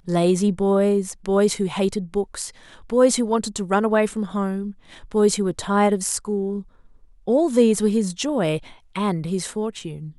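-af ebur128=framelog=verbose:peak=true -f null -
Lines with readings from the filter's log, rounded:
Integrated loudness:
  I:         -21.5 LUFS
  Threshold: -32.0 LUFS
Loudness range:
  LRA:         1.6 LU
  Threshold: -42.0 LUFS
  LRA low:   -22.8 LUFS
  LRA high:  -21.1 LUFS
True peak:
  Peak:       -4.7 dBFS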